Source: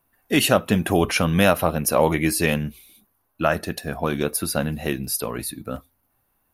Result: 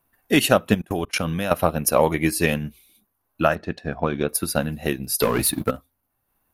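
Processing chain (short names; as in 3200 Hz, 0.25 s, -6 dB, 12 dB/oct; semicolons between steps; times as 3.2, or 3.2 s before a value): 0.74–1.51 level quantiser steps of 24 dB; 3.55–4.29 air absorption 160 m; 5.2–5.71 sample leveller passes 3; transient shaper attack +4 dB, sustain -5 dB; gain -1 dB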